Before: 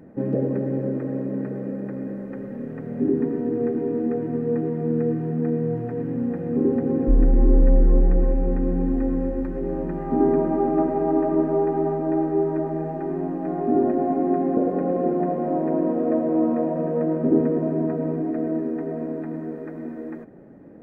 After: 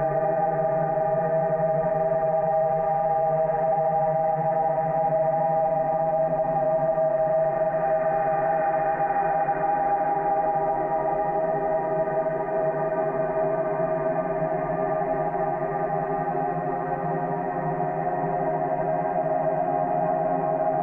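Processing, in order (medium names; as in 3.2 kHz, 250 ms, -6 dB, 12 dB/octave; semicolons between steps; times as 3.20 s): Paulstretch 49×, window 0.10 s, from 12.83 s; FFT filter 130 Hz 0 dB, 330 Hz -13 dB, 650 Hz +11 dB, 1.4 kHz +8 dB, 2 kHz +11 dB, 3.5 kHz -1 dB; peak limiter -17.5 dBFS, peak gain reduction 7.5 dB; trim +2 dB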